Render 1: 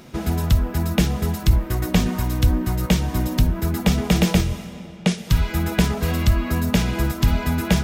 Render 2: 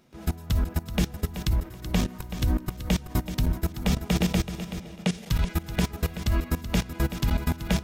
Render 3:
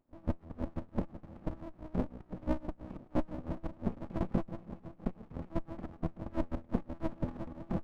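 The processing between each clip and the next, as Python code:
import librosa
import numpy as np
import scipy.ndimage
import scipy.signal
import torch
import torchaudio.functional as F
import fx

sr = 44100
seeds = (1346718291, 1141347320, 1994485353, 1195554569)

y1 = fx.level_steps(x, sr, step_db=20)
y1 = fx.echo_feedback(y1, sr, ms=379, feedback_pct=23, wet_db=-11)
y1 = y1 * librosa.db_to_amplitude(-1.5)
y2 = fx.filter_lfo_bandpass(y1, sr, shape='sine', hz=5.9, low_hz=380.0, high_hz=3200.0, q=1.1)
y2 = fx.formant_cascade(y2, sr, vowel='u')
y2 = fx.running_max(y2, sr, window=65)
y2 = y2 * librosa.db_to_amplitude(12.5)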